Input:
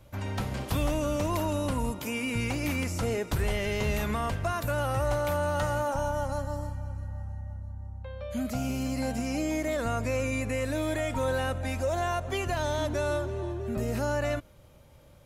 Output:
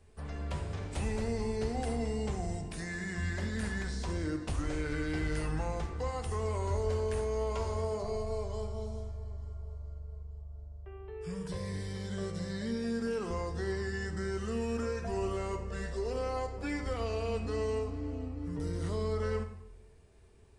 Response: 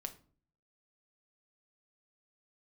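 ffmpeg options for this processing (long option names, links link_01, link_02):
-filter_complex "[1:a]atrim=start_sample=2205,asetrate=25578,aresample=44100[link_01];[0:a][link_01]afir=irnorm=-1:irlink=0,asetrate=32667,aresample=44100,volume=-6.5dB"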